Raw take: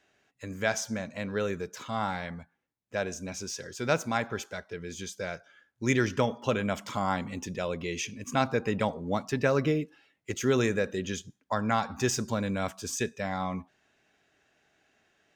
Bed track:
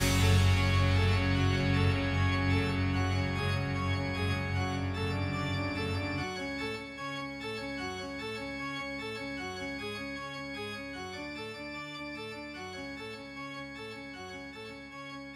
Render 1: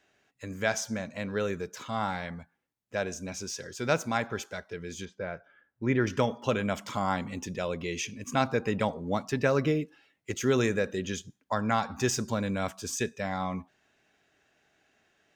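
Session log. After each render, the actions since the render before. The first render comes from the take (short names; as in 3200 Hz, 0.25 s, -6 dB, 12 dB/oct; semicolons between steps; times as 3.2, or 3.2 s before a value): 5.05–6.07 LPF 1800 Hz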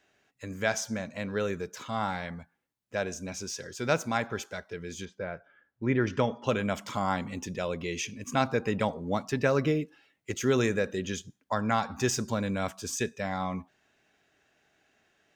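5.24–6.47 air absorption 90 m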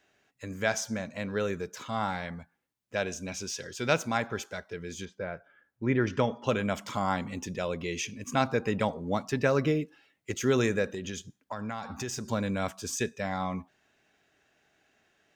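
2.95–4.07 bell 3000 Hz +6 dB 0.81 oct; 10.86–12.28 compressor 4:1, threshold -32 dBFS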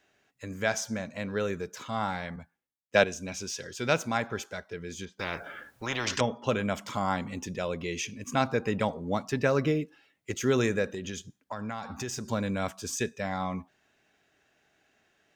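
2.36–3.04 three-band expander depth 100%; 5.19–6.21 spectral compressor 4:1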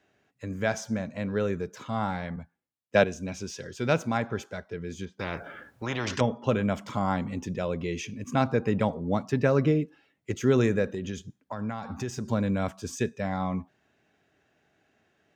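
HPF 78 Hz; tilt -2 dB/oct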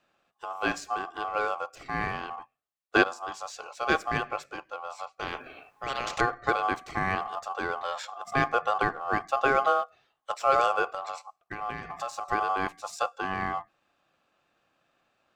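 ring modulator 950 Hz; in parallel at -10 dB: crossover distortion -34.5 dBFS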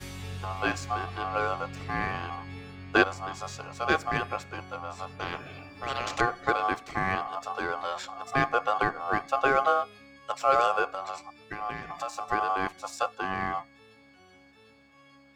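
add bed track -13.5 dB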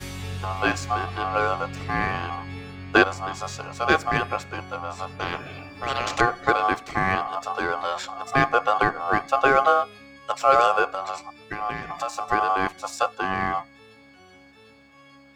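gain +5.5 dB; limiter -1 dBFS, peak gain reduction 2 dB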